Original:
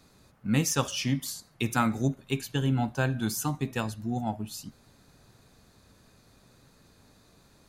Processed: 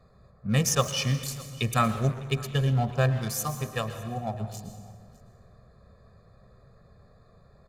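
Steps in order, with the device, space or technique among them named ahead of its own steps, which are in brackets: Wiener smoothing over 15 samples; comb 1.7 ms, depth 82%; 3.19–4.34 low shelf 370 Hz -5.5 dB; echo 0.606 s -22.5 dB; saturated reverb return (on a send at -6.5 dB: reverb RT60 1.4 s, pre-delay 0.105 s + soft clip -29 dBFS, distortion -8 dB); on the sum: gain +1 dB

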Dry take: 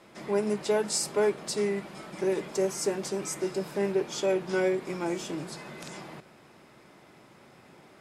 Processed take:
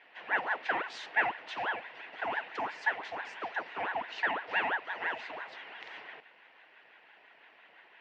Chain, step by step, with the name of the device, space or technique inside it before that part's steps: voice changer toy (ring modulator with a swept carrier 800 Hz, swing 65%, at 5.9 Hz; speaker cabinet 500–3500 Hz, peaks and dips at 550 Hz -4 dB, 1200 Hz -7 dB, 1900 Hz +8 dB, 2700 Hz +6 dB); gain -1 dB

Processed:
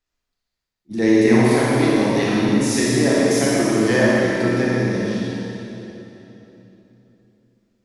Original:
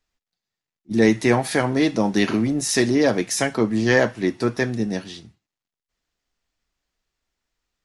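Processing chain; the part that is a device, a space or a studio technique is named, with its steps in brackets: tunnel (flutter echo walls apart 9.9 m, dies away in 0.55 s; reverb RT60 3.4 s, pre-delay 23 ms, DRR -5.5 dB); gain -5.5 dB

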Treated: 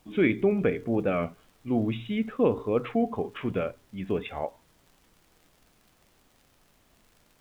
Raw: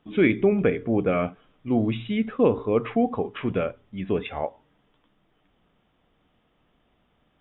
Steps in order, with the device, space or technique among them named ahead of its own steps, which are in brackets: warped LP (record warp 33 1/3 rpm, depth 100 cents; crackle; pink noise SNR 35 dB); gain -3.5 dB

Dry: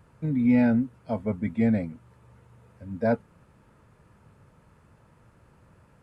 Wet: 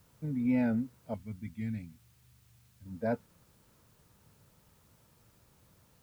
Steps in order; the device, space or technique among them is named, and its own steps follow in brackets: 1.14–2.86 EQ curve 110 Hz 0 dB, 380 Hz -12 dB, 540 Hz -24 dB, 2800 Hz +2 dB; plain cassette with noise reduction switched in (mismatched tape noise reduction decoder only; wow and flutter; white noise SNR 32 dB); gain -8 dB

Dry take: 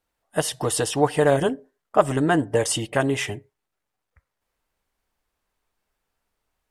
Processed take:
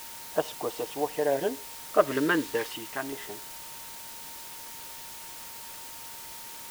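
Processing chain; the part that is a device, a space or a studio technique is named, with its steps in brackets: shortwave radio (BPF 330–2500 Hz; tremolo 0.49 Hz, depth 60%; LFO notch saw down 0.32 Hz 470–2500 Hz; whine 920 Hz -50 dBFS; white noise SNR 10 dB); 2.06–2.73 dynamic EQ 3200 Hz, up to +5 dB, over -43 dBFS, Q 0.87

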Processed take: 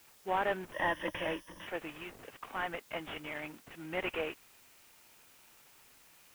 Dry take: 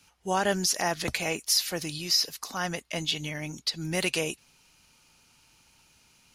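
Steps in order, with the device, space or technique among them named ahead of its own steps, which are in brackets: army field radio (BPF 370–3400 Hz; CVSD 16 kbps; white noise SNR 22 dB); 0.72–1.67 ripple EQ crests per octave 1.2, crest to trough 13 dB; gain -2.5 dB

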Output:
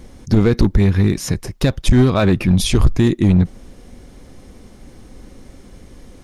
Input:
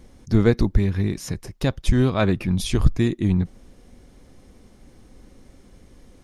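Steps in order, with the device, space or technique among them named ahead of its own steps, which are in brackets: limiter into clipper (limiter -11 dBFS, peak gain reduction 7.5 dB; hard clip -14.5 dBFS, distortion -18 dB); gain +8.5 dB

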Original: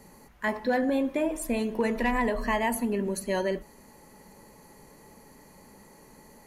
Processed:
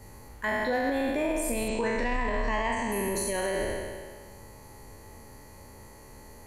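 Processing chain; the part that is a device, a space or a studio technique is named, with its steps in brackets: spectral trails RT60 1.71 s; car stereo with a boomy subwoofer (resonant low shelf 130 Hz +7 dB, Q 3; limiter -20 dBFS, peak gain reduction 9 dB); 1.68–2.92 steep low-pass 8300 Hz 72 dB/oct

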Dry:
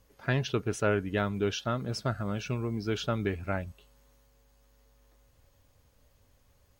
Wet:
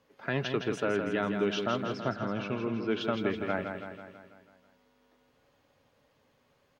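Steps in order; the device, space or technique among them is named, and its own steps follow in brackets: 1.93–3.01 air absorption 130 m; DJ mixer with the lows and highs turned down (three-band isolator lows -24 dB, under 150 Hz, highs -15 dB, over 4300 Hz; limiter -20.5 dBFS, peak gain reduction 6.5 dB); feedback echo 0.164 s, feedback 57%, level -6.5 dB; gain +2 dB

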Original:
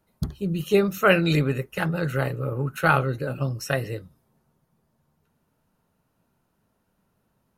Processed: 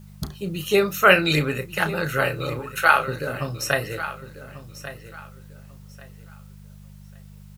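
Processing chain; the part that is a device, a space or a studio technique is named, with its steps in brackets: 2.59–3.08 Bessel high-pass 590 Hz; low shelf 500 Hz -11 dB; video cassette with head-switching buzz (buzz 50 Hz, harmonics 4, -51 dBFS -1 dB/oct; white noise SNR 36 dB); doubler 33 ms -11 dB; feedback echo 1.142 s, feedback 25%, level -14 dB; gain +6.5 dB

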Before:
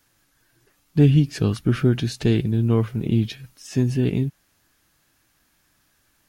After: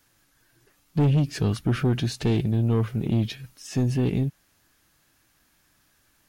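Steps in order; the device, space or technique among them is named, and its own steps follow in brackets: saturation between pre-emphasis and de-emphasis (high shelf 2600 Hz +11 dB; soft clip -16 dBFS, distortion -11 dB; high shelf 2600 Hz -11 dB)

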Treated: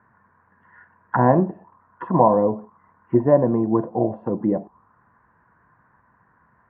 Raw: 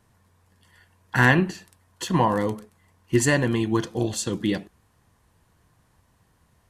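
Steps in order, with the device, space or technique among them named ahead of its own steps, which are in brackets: envelope filter bass rig (envelope low-pass 640–1600 Hz down, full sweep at -22.5 dBFS; speaker cabinet 74–2100 Hz, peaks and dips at 86 Hz -7 dB, 220 Hz +4 dB, 1000 Hz +8 dB)

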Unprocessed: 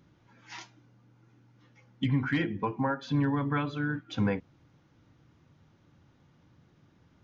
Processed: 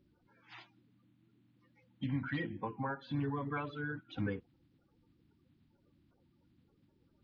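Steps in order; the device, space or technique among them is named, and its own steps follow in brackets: clip after many re-uploads (LPF 4300 Hz 24 dB/oct; bin magnitudes rounded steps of 30 dB); gain -8 dB

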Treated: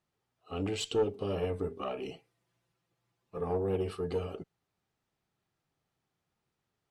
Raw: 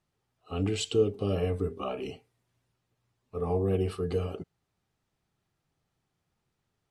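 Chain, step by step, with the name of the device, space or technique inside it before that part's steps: tube preamp driven hard (tube stage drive 19 dB, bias 0.45; low shelf 140 Hz -7 dB; high shelf 6200 Hz -4 dB); 2.11–3.41 comb 5.9 ms, depth 64%

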